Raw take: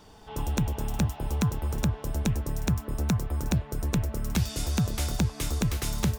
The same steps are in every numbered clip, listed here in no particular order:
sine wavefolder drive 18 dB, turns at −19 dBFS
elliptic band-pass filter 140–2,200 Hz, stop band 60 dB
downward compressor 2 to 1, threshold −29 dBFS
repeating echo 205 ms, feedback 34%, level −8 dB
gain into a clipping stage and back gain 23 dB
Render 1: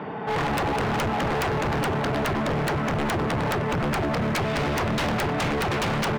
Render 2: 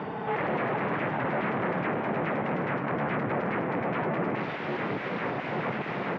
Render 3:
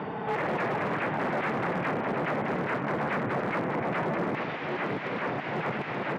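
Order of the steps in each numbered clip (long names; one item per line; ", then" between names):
elliptic band-pass filter, then downward compressor, then repeating echo, then sine wavefolder, then gain into a clipping stage and back
gain into a clipping stage and back, then repeating echo, then sine wavefolder, then downward compressor, then elliptic band-pass filter
repeating echo, then sine wavefolder, then downward compressor, then elliptic band-pass filter, then gain into a clipping stage and back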